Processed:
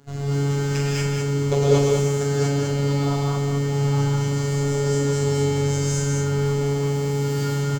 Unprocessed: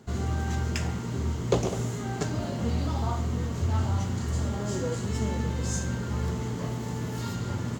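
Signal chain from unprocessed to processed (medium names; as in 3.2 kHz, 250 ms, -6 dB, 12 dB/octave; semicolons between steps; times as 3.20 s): robot voice 141 Hz; multi-tap echo 43/201 ms -7/-4 dB; gated-style reverb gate 260 ms rising, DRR -7.5 dB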